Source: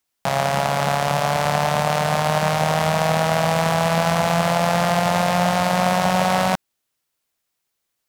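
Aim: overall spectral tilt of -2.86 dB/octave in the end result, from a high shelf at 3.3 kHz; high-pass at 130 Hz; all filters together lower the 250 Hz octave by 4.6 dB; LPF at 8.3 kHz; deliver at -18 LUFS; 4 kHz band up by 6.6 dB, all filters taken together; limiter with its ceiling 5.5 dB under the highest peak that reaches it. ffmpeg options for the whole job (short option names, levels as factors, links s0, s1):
-af "highpass=130,lowpass=8300,equalizer=f=250:t=o:g=-7,highshelf=f=3300:g=6.5,equalizer=f=4000:t=o:g=4,volume=1.5,alimiter=limit=0.794:level=0:latency=1"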